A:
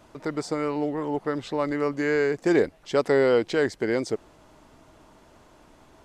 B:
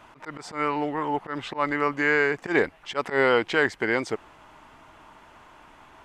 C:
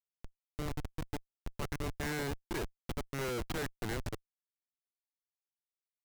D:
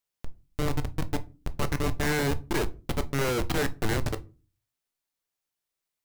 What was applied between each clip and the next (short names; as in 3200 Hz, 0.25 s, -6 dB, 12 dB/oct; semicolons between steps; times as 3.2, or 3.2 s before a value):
band shelf 1600 Hz +10 dB 2.3 oct; auto swell 0.101 s; gain -2 dB
pre-emphasis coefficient 0.8; Schmitt trigger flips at -33.5 dBFS; gain +4 dB
reverb RT60 0.35 s, pre-delay 7 ms, DRR 10.5 dB; gain +9 dB